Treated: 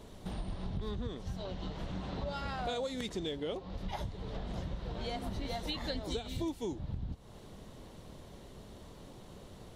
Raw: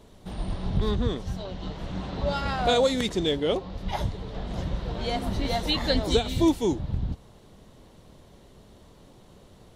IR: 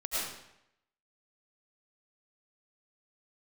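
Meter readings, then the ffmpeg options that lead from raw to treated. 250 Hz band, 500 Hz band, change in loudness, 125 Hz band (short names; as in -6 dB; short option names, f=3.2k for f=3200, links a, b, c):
-12.0 dB, -12.5 dB, -12.0 dB, -10.0 dB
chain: -af "acompressor=threshold=-38dB:ratio=4,volume=1dB"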